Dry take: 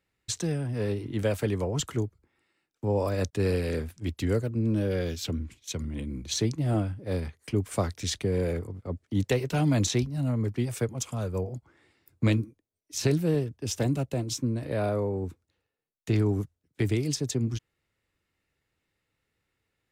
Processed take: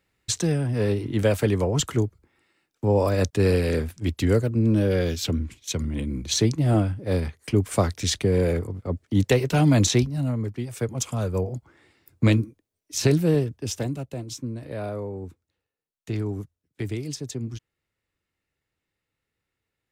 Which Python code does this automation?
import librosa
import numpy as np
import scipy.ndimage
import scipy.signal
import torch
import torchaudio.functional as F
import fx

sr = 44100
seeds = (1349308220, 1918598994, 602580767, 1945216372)

y = fx.gain(x, sr, db=fx.line((9.99, 6.0), (10.7, -3.5), (10.93, 5.0), (13.54, 5.0), (13.95, -3.5)))